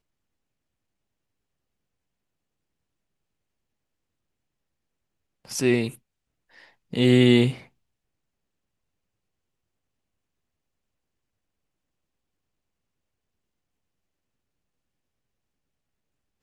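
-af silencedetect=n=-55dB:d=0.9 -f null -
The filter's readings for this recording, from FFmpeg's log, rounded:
silence_start: 0.00
silence_end: 5.45 | silence_duration: 5.45
silence_start: 7.69
silence_end: 16.42 | silence_duration: 8.74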